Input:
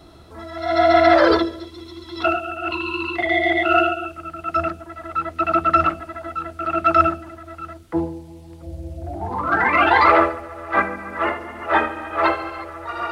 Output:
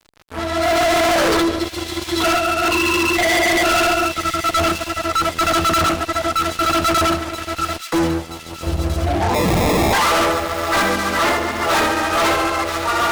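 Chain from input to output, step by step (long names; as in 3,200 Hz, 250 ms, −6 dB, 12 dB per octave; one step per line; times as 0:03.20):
0:09.34–0:09.93: sample-rate reduction 1,500 Hz, jitter 0%
fuzz pedal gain 31 dB, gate −39 dBFS
delay with a high-pass on its return 976 ms, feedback 62%, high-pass 2,900 Hz, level −7.5 dB
level −1.5 dB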